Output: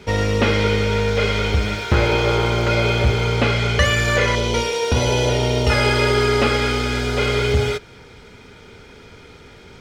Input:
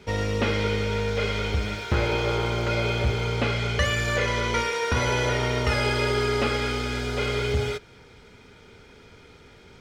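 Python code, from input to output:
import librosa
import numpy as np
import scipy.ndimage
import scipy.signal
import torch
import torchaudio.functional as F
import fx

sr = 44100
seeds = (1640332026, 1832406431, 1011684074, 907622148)

y = fx.band_shelf(x, sr, hz=1500.0, db=-10.0, octaves=1.3, at=(4.35, 5.7))
y = y * 10.0 ** (7.0 / 20.0)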